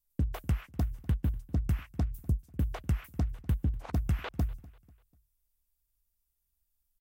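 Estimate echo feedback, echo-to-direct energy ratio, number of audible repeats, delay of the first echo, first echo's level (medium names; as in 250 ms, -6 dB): 40%, -21.5 dB, 2, 246 ms, -22.0 dB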